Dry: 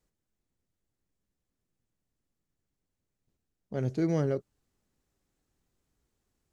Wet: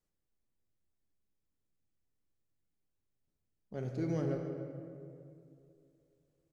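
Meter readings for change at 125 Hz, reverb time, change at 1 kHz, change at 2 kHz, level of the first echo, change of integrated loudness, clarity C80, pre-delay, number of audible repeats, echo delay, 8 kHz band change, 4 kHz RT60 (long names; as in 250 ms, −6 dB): −5.5 dB, 2.5 s, −6.0 dB, −6.5 dB, −17.5 dB, −7.5 dB, 4.5 dB, 3 ms, 1, 284 ms, can't be measured, 1.3 s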